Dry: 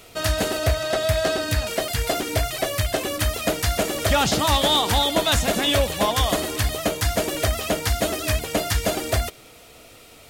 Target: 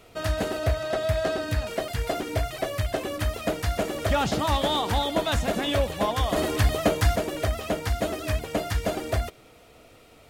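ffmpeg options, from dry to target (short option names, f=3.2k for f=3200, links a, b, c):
-filter_complex "[0:a]highshelf=f=2.8k:g=-10,asettb=1/sr,asplit=3[a][b][c];[a]atrim=end=6.364[d];[b]atrim=start=6.36:end=7.16,asetpts=PTS-STARTPTS,afade=t=in:d=0.004:c=qsin,afade=t=out:st=0.796:d=0.004:c=qsin,acontrast=42[e];[c]atrim=start=7.156[f];[d][e]acrossfade=d=0.004:c1=hsin:c2=qsin[g];[g][f]acrossfade=d=0.004:c1=qsin:c2=hsin,volume=-3dB"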